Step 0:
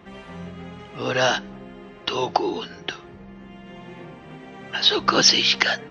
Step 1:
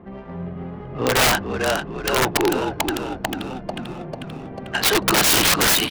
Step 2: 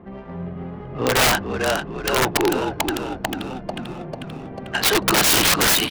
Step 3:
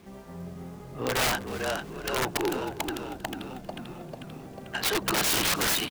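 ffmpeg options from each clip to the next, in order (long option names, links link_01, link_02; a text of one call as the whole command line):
ffmpeg -i in.wav -filter_complex "[0:a]adynamicsmooth=sensitivity=1.5:basefreq=920,asplit=9[link_01][link_02][link_03][link_04][link_05][link_06][link_07][link_08][link_09];[link_02]adelay=444,afreqshift=-41,volume=-7dB[link_10];[link_03]adelay=888,afreqshift=-82,volume=-11.2dB[link_11];[link_04]adelay=1332,afreqshift=-123,volume=-15.3dB[link_12];[link_05]adelay=1776,afreqshift=-164,volume=-19.5dB[link_13];[link_06]adelay=2220,afreqshift=-205,volume=-23.6dB[link_14];[link_07]adelay=2664,afreqshift=-246,volume=-27.8dB[link_15];[link_08]adelay=3108,afreqshift=-287,volume=-31.9dB[link_16];[link_09]adelay=3552,afreqshift=-328,volume=-36.1dB[link_17];[link_01][link_10][link_11][link_12][link_13][link_14][link_15][link_16][link_17]amix=inputs=9:normalize=0,aeval=exprs='(mod(6.68*val(0)+1,2)-1)/6.68':channel_layout=same,volume=6dB" out.wav
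ffmpeg -i in.wav -af anull out.wav
ffmpeg -i in.wav -af "acrusher=bits=7:mix=0:aa=0.000001,aecho=1:1:316|632:0.112|0.0281,volume=-9dB" out.wav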